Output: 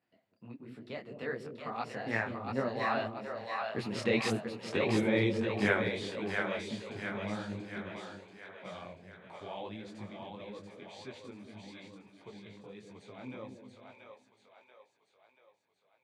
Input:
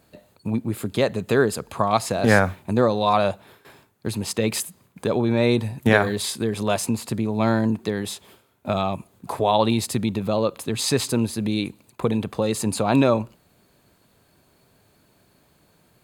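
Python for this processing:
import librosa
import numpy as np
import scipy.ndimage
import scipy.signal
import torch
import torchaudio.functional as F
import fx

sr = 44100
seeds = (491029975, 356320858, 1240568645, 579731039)

p1 = fx.doppler_pass(x, sr, speed_mps=27, closest_m=17.0, pass_at_s=4.29)
p2 = fx.bandpass_edges(p1, sr, low_hz=110.0, high_hz=4300.0)
p3 = fx.peak_eq(p2, sr, hz=2100.0, db=7.5, octaves=0.84)
p4 = p3 + fx.echo_split(p3, sr, split_hz=490.0, low_ms=190, high_ms=684, feedback_pct=52, wet_db=-4, dry=0)
p5 = fx.detune_double(p4, sr, cents=56)
y = p5 * 10.0 ** (-2.5 / 20.0)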